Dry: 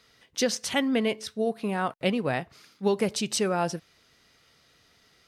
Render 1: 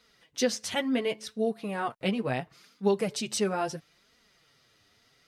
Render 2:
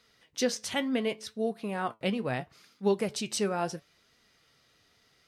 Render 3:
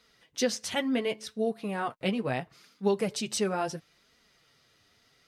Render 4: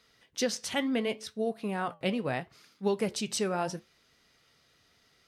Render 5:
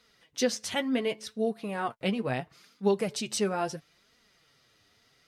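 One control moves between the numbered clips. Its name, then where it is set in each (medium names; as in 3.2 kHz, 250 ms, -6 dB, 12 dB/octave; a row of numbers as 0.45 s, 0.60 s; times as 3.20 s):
flange, regen: +2%, +70%, -21%, -79%, +25%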